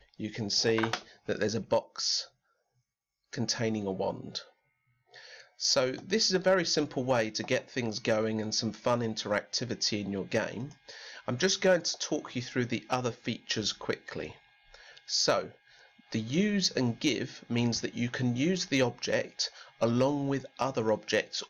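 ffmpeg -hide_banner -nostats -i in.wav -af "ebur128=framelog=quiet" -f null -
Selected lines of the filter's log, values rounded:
Integrated loudness:
  I:         -30.4 LUFS
  Threshold: -40.9 LUFS
Loudness range:
  LRA:         4.5 LU
  Threshold: -51.2 LUFS
  LRA low:   -33.7 LUFS
  LRA high:  -29.2 LUFS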